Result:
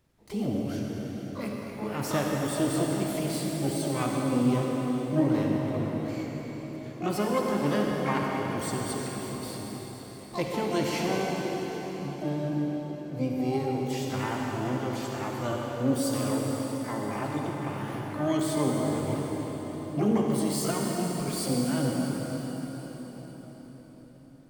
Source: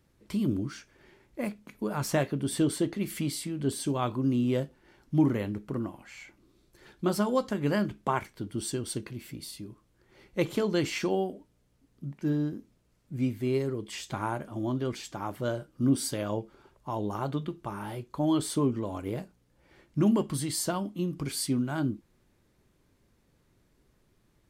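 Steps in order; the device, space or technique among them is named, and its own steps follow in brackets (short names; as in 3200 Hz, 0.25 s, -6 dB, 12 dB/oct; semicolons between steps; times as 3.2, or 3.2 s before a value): 16.08–17.16 HPF 120 Hz 6 dB/oct; shimmer-style reverb (harmoniser +12 st -7 dB; reverb RT60 5.4 s, pre-delay 46 ms, DRR -1.5 dB); gain -3 dB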